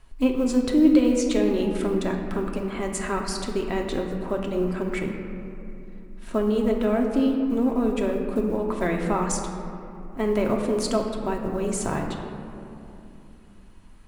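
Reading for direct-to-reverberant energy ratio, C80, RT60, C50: 1.0 dB, 5.5 dB, 2.8 s, 4.0 dB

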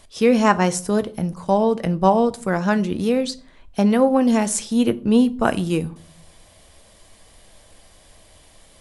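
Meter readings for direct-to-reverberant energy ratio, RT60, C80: 12.0 dB, 0.45 s, 25.5 dB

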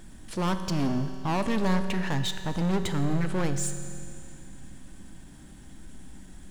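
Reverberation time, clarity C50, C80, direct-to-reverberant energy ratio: 2.6 s, 9.0 dB, 10.0 dB, 8.0 dB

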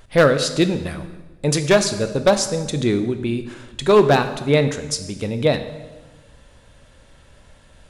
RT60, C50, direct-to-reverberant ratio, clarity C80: 1.2 s, 11.0 dB, 9.0 dB, 12.5 dB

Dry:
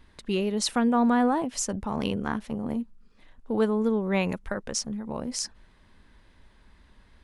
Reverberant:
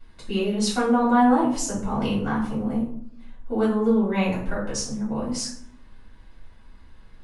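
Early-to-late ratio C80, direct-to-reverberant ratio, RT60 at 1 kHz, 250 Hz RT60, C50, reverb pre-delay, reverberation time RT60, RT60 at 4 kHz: 8.5 dB, -9.5 dB, 0.65 s, 0.90 s, 4.5 dB, 3 ms, 0.65 s, 0.35 s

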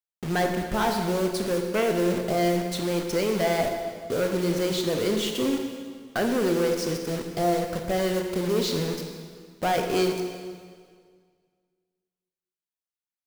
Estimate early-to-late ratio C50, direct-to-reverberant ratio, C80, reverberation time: 5.0 dB, 4.0 dB, 6.0 dB, 1.9 s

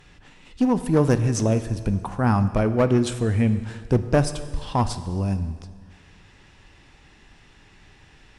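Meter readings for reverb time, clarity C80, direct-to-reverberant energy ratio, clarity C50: 1.8 s, 13.5 dB, 10.5 dB, 12.5 dB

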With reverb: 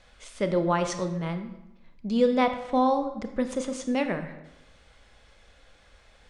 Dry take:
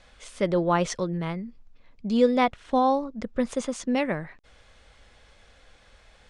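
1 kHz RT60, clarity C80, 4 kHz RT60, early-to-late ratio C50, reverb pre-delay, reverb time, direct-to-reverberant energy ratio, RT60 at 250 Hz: 0.95 s, 12.0 dB, 0.70 s, 10.0 dB, 26 ms, 0.95 s, 8.0 dB, 1.0 s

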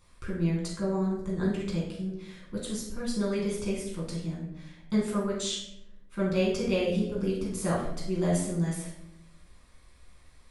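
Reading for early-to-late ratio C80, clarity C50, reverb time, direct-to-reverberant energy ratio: 7.0 dB, 3.0 dB, 0.80 s, -5.5 dB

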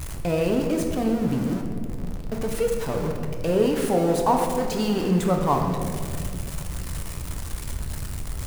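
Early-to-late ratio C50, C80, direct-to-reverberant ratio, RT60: 4.5 dB, 6.0 dB, 2.0 dB, 2.4 s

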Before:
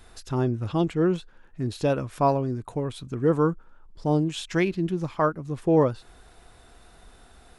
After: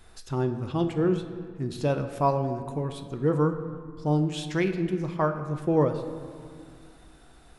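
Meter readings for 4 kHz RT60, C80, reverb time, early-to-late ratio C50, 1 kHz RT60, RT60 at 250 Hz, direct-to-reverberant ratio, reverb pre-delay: 1.2 s, 10.5 dB, 2.1 s, 9.5 dB, 2.1 s, 2.9 s, 7.0 dB, 5 ms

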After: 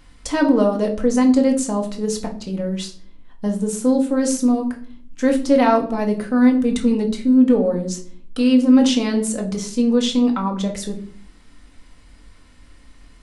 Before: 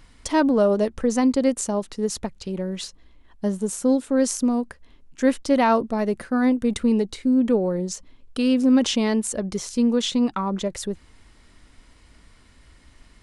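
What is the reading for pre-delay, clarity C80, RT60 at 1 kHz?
4 ms, 16.0 dB, 0.45 s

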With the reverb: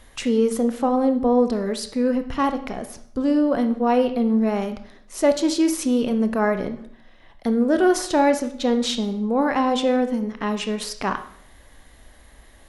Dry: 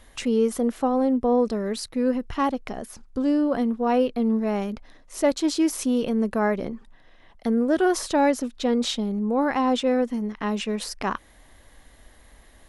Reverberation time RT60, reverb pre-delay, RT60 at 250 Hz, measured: 0.60 s, 20 ms, 0.60 s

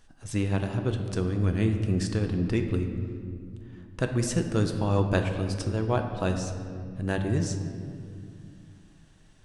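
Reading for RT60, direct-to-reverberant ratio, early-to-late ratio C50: 2.3 s, 4.5 dB, 6.5 dB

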